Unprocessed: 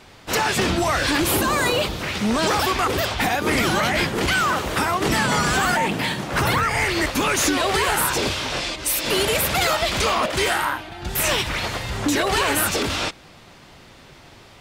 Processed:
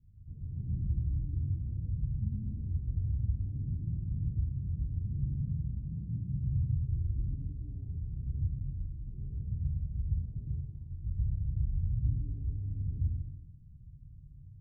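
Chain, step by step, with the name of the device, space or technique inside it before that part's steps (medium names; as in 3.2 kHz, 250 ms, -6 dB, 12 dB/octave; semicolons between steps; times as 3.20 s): club heard from the street (peak limiter -15.5 dBFS, peak gain reduction 7.5 dB; low-pass 130 Hz 24 dB/octave; reverberation RT60 0.95 s, pre-delay 105 ms, DRR -4.5 dB); trim -4.5 dB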